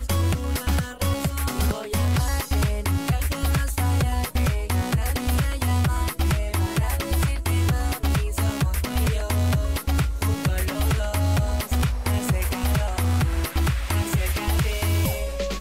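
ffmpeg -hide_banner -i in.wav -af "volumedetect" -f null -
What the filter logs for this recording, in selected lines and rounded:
mean_volume: -22.5 dB
max_volume: -12.6 dB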